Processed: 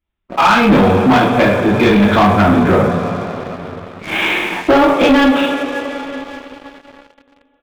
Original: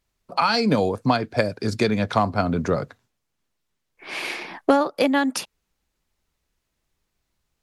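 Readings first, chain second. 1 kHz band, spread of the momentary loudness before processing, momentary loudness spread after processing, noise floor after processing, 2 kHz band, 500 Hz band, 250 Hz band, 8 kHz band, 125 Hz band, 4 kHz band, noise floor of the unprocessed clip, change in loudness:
+11.0 dB, 10 LU, 16 LU, −58 dBFS, +12.5 dB, +10.0 dB, +12.0 dB, +3.0 dB, +10.5 dB, +8.5 dB, −78 dBFS, +10.5 dB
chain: downsampling to 8,000 Hz
coupled-rooms reverb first 0.45 s, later 4.9 s, from −18 dB, DRR −9 dB
leveller curve on the samples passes 3
level −6 dB

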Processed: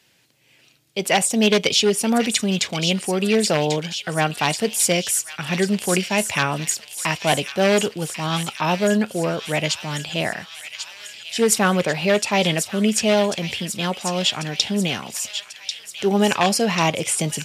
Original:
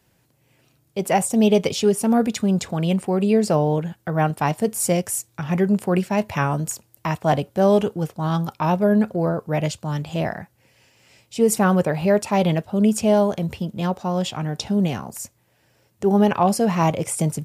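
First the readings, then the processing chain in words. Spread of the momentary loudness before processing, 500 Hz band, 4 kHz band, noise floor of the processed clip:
9 LU, −0.5 dB, +12.0 dB, −55 dBFS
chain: wavefolder on the positive side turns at −11.5 dBFS
meter weighting curve D
on a send: delay with a high-pass on its return 1,092 ms, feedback 65%, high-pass 2,400 Hz, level −7 dB

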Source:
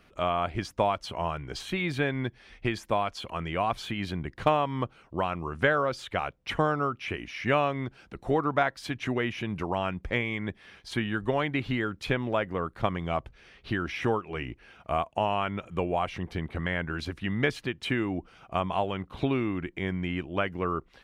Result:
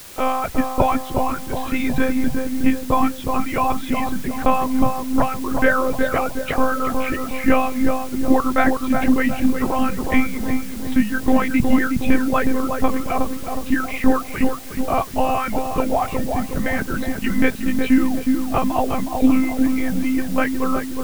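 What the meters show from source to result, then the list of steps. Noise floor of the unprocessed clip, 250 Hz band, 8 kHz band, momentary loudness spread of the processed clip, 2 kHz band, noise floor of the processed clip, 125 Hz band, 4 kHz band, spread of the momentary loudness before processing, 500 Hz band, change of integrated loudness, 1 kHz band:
−60 dBFS, +14.0 dB, +16.0 dB, 6 LU, +7.0 dB, −30 dBFS, +2.5 dB, +2.0 dB, 8 LU, +6.5 dB, +9.0 dB, +8.5 dB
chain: reverb reduction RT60 1.7 s
thirty-one-band graphic EQ 125 Hz +11 dB, 250 Hz +8 dB, 3,150 Hz −10 dB
one-pitch LPC vocoder at 8 kHz 260 Hz
feedback echo with a low-pass in the loop 365 ms, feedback 55%, low-pass 1,000 Hz, level −3.5 dB
in parallel at −9.5 dB: bit-depth reduction 6 bits, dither triangular
on the sum: boost into a limiter +7.5 dB
level −1.5 dB

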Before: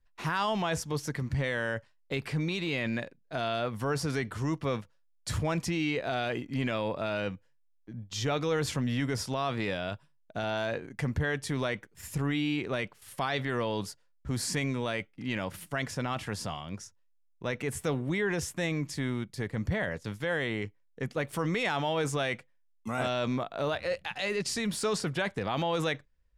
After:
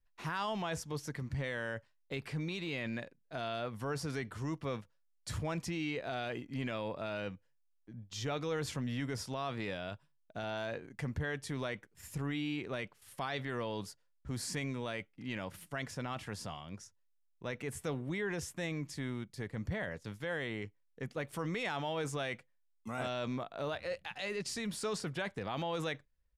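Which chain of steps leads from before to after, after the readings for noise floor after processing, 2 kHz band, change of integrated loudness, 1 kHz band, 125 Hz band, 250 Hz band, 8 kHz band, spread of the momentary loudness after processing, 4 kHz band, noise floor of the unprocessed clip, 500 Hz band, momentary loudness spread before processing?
−73 dBFS, −7.0 dB, −7.0 dB, −7.0 dB, −7.0 dB, −7.0 dB, −7.0 dB, 8 LU, −7.0 dB, −66 dBFS, −7.0 dB, 8 LU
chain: downsampling to 32,000 Hz
level −7 dB

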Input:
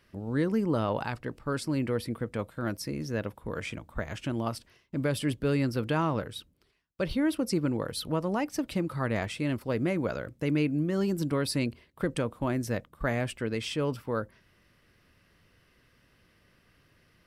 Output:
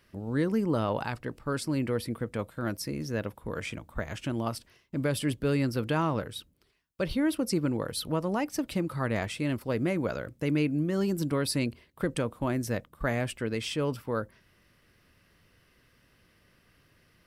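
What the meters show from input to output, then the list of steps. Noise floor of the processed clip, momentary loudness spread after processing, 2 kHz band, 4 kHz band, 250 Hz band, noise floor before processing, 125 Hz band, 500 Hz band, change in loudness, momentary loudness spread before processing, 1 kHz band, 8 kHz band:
−66 dBFS, 8 LU, 0.0 dB, +0.5 dB, 0.0 dB, −66 dBFS, 0.0 dB, 0.0 dB, 0.0 dB, 8 LU, 0.0 dB, +2.5 dB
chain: high-shelf EQ 8,200 Hz +4.5 dB

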